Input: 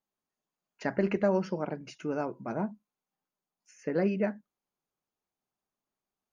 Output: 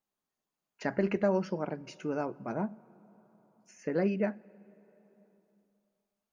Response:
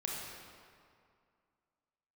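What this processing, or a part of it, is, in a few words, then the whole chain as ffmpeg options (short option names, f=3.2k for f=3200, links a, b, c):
ducked reverb: -filter_complex "[0:a]asplit=3[a][b][c];[1:a]atrim=start_sample=2205[d];[b][d]afir=irnorm=-1:irlink=0[e];[c]apad=whole_len=278730[f];[e][f]sidechaincompress=threshold=-38dB:ratio=10:attack=16:release=1000,volume=-11dB[g];[a][g]amix=inputs=2:normalize=0,volume=-1.5dB"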